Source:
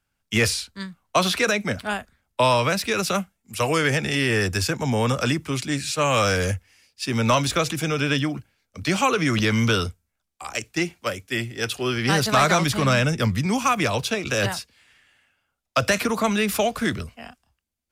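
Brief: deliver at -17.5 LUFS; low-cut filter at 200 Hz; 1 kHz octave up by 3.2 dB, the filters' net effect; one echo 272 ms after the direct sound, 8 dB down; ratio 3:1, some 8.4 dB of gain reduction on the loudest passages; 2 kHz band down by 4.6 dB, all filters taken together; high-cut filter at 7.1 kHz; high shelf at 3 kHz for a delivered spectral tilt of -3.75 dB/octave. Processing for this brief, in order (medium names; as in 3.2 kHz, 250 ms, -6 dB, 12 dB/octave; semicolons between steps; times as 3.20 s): high-pass 200 Hz; low-pass 7.1 kHz; peaking EQ 1 kHz +6.5 dB; peaking EQ 2 kHz -5.5 dB; treble shelf 3 kHz -7.5 dB; compression 3:1, threshold -24 dBFS; delay 272 ms -8 dB; trim +10.5 dB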